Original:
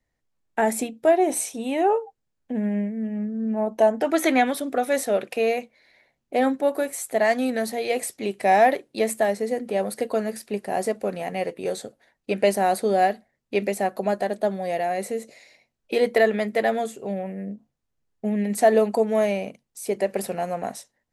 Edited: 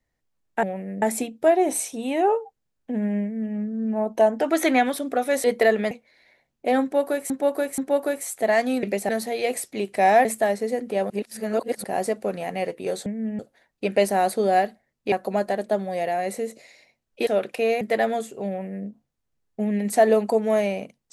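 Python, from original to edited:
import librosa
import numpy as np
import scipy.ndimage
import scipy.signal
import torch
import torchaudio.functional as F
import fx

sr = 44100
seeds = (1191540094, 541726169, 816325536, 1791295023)

y = fx.edit(x, sr, fx.duplicate(start_s=2.84, length_s=0.33, to_s=11.85),
    fx.swap(start_s=5.05, length_s=0.54, other_s=15.99, other_length_s=0.47),
    fx.repeat(start_s=6.5, length_s=0.48, count=3),
    fx.cut(start_s=8.71, length_s=0.33),
    fx.reverse_span(start_s=9.89, length_s=0.74),
    fx.move(start_s=13.58, length_s=0.26, to_s=7.55),
    fx.duplicate(start_s=17.13, length_s=0.39, to_s=0.63), tone=tone)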